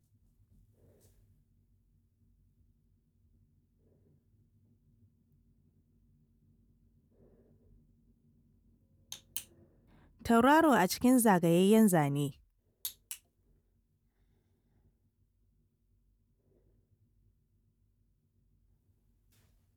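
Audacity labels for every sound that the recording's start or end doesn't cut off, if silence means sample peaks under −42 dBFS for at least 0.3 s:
9.120000	9.420000	sound
10.250000	12.300000	sound
12.850000	13.150000	sound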